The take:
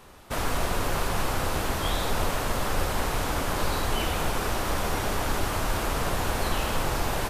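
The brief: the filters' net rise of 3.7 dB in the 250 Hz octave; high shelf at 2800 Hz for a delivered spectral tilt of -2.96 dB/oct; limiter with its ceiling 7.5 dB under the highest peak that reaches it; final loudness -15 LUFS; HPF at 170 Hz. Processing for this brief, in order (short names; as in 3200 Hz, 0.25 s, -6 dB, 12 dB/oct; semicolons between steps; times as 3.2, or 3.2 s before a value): HPF 170 Hz; bell 250 Hz +6 dB; high shelf 2800 Hz +5.5 dB; gain +15 dB; limiter -6.5 dBFS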